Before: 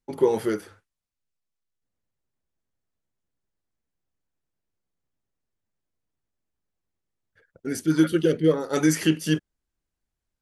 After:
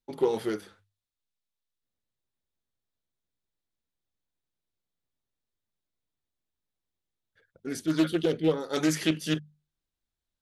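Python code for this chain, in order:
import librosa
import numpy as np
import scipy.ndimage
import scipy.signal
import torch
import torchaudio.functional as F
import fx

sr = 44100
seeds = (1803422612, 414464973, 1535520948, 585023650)

y = fx.peak_eq(x, sr, hz=3700.0, db=8.5, octaves=0.51)
y = fx.hum_notches(y, sr, base_hz=50, count=4)
y = fx.doppler_dist(y, sr, depth_ms=0.24)
y = F.gain(torch.from_numpy(y), -5.0).numpy()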